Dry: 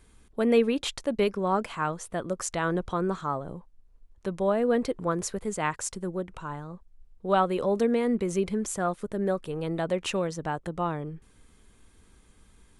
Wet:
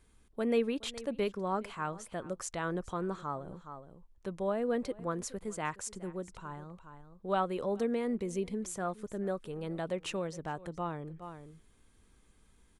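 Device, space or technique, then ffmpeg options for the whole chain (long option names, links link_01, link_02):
ducked delay: -filter_complex "[0:a]asplit=3[link_01][link_02][link_03];[link_02]adelay=418,volume=-9dB[link_04];[link_03]apad=whole_len=582725[link_05];[link_04][link_05]sidechaincompress=threshold=-44dB:ratio=4:attack=12:release=133[link_06];[link_01][link_06]amix=inputs=2:normalize=0,asettb=1/sr,asplit=3[link_07][link_08][link_09];[link_07]atrim=end=8.214[link_10];[link_08]atrim=start=8.21:end=8.61,asetpts=PTS-STARTPTS,afade=type=in:duration=0.004:curve=qsin,afade=type=out:start_time=0.396:duration=0.004:curve=qsin,equalizer=frequency=1400:width=2.7:gain=-10[link_11];[link_09]atrim=start=8.606[link_12];[link_10][link_11]acrossfade=duration=0.004:curve1=hsin:curve2=qsin[link_13];[link_13][link_12]acrossfade=duration=0.004:curve1=qsin:curve2=hsin,volume=-7.5dB"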